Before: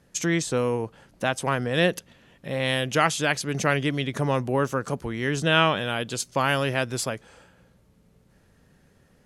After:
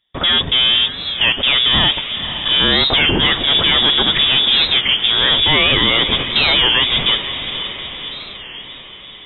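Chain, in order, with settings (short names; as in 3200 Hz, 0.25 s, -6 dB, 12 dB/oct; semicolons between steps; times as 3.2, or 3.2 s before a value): in parallel at -1.5 dB: negative-ratio compressor -25 dBFS; on the sum: sample leveller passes 5; inverted band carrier 3600 Hz; low shelf 480 Hz +9 dB; on a send: diffused feedback echo 0.51 s, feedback 61%, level -10 dB; on the sum: record warp 33 1/3 rpm, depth 160 cents; gain -7 dB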